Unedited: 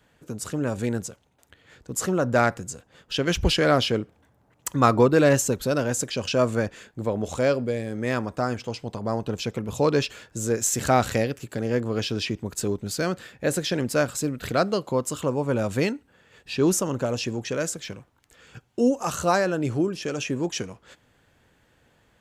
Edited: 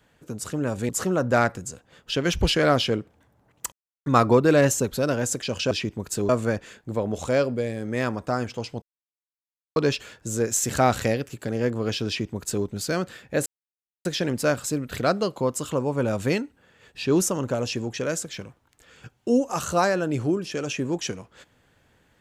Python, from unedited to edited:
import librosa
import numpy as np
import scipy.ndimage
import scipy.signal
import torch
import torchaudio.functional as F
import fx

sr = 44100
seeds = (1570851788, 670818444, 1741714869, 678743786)

y = fx.edit(x, sr, fx.cut(start_s=0.89, length_s=1.02),
    fx.insert_silence(at_s=4.74, length_s=0.34),
    fx.silence(start_s=8.92, length_s=0.94),
    fx.duplicate(start_s=12.17, length_s=0.58, to_s=6.39),
    fx.insert_silence(at_s=13.56, length_s=0.59), tone=tone)